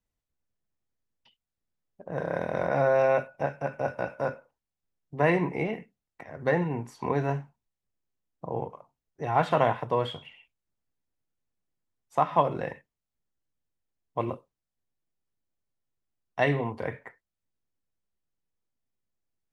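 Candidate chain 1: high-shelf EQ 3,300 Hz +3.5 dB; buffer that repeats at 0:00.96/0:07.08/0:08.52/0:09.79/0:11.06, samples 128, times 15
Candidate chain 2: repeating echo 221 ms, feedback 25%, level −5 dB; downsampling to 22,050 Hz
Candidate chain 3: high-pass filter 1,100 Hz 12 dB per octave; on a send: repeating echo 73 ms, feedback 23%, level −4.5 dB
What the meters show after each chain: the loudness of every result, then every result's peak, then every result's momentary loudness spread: −28.5, −28.0, −34.5 LKFS; −9.0, −8.5, −14.5 dBFS; 16, 18, 17 LU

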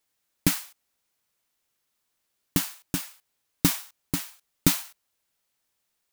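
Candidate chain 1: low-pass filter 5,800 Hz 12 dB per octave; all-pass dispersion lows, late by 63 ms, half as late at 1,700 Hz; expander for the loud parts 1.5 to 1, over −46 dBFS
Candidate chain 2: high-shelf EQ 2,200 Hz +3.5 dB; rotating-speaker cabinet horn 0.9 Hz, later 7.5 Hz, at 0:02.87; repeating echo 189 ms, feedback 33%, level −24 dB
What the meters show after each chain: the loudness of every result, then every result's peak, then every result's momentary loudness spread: −33.0, −28.5 LKFS; −5.0, −2.0 dBFS; 13, 16 LU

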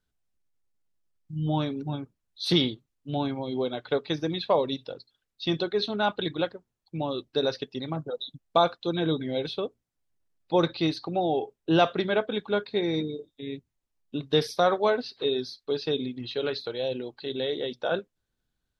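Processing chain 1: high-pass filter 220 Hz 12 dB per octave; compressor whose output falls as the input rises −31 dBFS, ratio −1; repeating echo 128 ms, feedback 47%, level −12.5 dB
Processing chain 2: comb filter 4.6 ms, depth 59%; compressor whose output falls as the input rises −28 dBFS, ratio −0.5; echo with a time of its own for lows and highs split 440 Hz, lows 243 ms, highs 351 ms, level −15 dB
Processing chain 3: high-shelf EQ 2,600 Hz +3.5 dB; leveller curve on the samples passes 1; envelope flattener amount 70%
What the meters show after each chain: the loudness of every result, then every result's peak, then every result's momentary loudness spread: −32.5, −30.5, −19.0 LKFS; −14.5, −13.5, −4.5 dBFS; 8, 10, 6 LU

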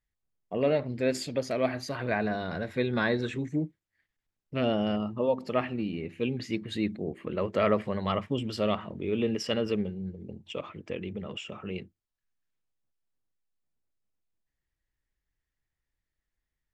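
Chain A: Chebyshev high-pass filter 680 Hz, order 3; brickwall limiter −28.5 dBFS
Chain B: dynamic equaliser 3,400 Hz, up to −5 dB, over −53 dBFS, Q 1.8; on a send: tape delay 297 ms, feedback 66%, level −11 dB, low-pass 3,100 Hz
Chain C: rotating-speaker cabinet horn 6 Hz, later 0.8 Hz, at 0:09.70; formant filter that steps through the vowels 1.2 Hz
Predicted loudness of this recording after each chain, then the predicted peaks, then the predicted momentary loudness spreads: −40.5, −31.0, −44.0 LKFS; −28.5, −12.5, −25.0 dBFS; 9, 12, 15 LU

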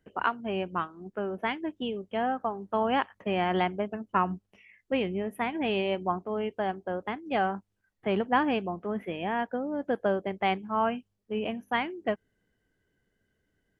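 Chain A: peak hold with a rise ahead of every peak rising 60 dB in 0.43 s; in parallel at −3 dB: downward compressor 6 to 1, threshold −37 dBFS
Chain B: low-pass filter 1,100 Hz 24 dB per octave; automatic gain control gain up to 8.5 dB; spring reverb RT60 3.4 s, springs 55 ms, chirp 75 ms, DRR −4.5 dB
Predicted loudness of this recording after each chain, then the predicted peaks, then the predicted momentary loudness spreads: −28.0, −17.0 LKFS; −8.5, −2.0 dBFS; 6, 7 LU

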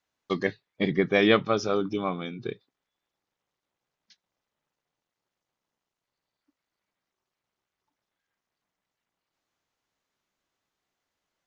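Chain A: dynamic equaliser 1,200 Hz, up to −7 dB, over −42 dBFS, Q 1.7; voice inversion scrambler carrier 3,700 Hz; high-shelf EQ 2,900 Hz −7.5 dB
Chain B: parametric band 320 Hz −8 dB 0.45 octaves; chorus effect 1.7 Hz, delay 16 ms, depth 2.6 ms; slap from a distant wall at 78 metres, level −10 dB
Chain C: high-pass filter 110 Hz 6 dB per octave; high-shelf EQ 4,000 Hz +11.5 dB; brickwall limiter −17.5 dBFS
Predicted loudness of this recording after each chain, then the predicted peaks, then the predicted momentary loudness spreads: −27.5, −30.0, −30.5 LKFS; −10.5, −8.5, −17.5 dBFS; 14, 16, 9 LU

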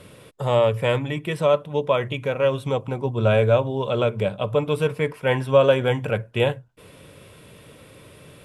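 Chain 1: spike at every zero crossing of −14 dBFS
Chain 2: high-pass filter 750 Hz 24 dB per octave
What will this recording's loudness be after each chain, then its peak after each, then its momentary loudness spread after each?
−20.5, −29.5 LKFS; −4.5, −10.0 dBFS; 5, 8 LU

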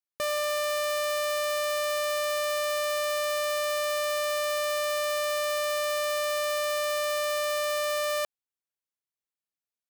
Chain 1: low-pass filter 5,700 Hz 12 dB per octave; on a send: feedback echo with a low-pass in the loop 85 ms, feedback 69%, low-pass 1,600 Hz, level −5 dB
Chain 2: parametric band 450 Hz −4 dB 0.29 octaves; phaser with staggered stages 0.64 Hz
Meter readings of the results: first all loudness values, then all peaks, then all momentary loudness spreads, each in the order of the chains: −29.5, −31.0 LKFS; −22.5, −20.5 dBFS; 0, 3 LU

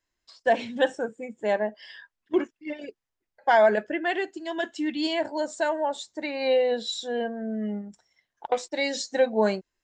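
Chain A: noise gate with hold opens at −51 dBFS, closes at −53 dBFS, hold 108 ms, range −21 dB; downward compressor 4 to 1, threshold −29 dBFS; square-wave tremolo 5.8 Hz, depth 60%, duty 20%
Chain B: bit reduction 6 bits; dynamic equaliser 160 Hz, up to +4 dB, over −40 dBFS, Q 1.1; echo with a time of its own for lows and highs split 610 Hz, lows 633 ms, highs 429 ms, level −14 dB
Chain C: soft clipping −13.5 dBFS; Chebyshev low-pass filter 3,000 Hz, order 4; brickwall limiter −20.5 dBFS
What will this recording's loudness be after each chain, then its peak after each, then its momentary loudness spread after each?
−38.5, −26.0, −31.0 LKFS; −18.0, −9.5, −20.5 dBFS; 10, 15, 10 LU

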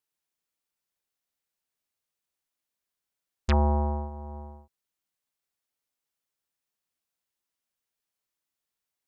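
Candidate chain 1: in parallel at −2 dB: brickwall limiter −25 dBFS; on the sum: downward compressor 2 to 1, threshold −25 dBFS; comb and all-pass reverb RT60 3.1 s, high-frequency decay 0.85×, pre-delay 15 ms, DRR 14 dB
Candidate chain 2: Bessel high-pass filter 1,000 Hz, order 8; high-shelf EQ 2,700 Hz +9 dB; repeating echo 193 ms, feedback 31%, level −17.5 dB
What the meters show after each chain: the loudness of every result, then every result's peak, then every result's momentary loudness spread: −30.0, −36.0 LKFS; −15.0, −10.0 dBFS; 13, 19 LU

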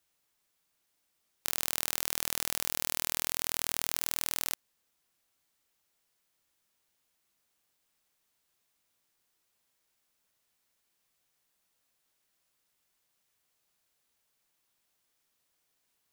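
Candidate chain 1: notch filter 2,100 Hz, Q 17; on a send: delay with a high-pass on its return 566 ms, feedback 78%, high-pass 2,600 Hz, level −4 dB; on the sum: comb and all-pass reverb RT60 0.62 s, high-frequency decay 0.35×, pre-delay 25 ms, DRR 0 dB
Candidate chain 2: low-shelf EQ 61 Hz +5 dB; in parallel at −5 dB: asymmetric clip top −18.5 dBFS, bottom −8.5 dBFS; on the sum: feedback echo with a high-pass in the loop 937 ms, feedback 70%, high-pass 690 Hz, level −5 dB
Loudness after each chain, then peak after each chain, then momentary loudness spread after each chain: −29.5, −31.5 LKFS; −4.0, −2.5 dBFS; 20, 20 LU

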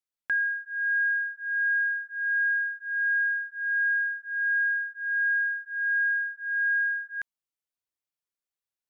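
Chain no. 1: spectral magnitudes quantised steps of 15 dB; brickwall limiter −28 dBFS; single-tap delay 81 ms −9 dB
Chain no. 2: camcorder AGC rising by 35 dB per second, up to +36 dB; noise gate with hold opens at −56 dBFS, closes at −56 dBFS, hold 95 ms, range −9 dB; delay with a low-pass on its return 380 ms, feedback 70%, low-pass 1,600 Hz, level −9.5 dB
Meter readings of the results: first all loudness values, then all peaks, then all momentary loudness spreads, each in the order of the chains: −28.5, −24.0 LKFS; −25.5, −14.0 dBFS; 2, 15 LU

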